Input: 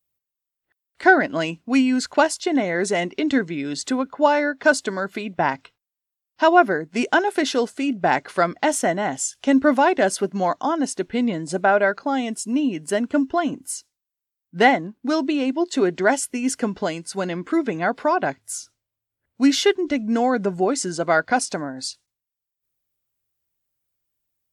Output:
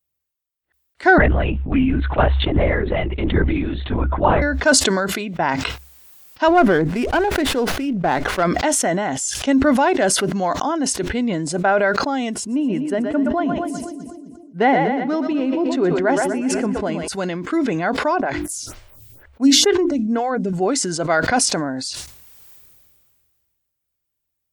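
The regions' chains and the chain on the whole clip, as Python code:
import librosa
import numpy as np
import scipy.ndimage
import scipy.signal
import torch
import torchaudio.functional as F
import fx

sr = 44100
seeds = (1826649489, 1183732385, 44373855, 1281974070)

y = fx.chain(x, sr, fx.air_absorb(metres=220.0),
    fx.lpc_vocoder(seeds[0], excitation='whisper', order=10), at=(1.18, 4.42))
y = fx.chain(y, sr, fx.high_shelf(hz=2000.0, db=-6.5),
    fx.running_max(window=5), at=(6.48, 8.43))
y = fx.chain(y, sr, fx.lowpass(hz=1300.0, slope=6),
    fx.echo_split(split_hz=420.0, low_ms=258, high_ms=121, feedback_pct=52, wet_db=-9.5), at=(12.34, 17.08))
y = fx.chain(y, sr, fx.low_shelf(hz=120.0, db=10.0),
    fx.hum_notches(base_hz=50, count=7),
    fx.stagger_phaser(hz=2.1), at=(18.2, 20.53))
y = fx.peak_eq(y, sr, hz=67.0, db=13.5, octaves=0.2)
y = fx.sustainer(y, sr, db_per_s=27.0)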